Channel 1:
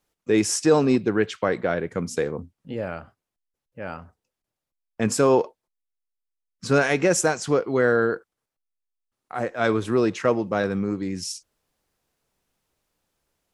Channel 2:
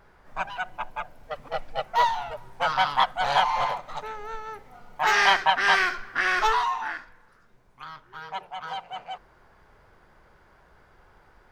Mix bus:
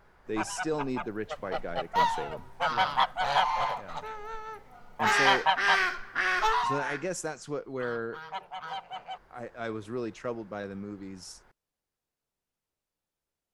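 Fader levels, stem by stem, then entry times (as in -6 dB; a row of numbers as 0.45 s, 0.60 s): -13.5 dB, -3.5 dB; 0.00 s, 0.00 s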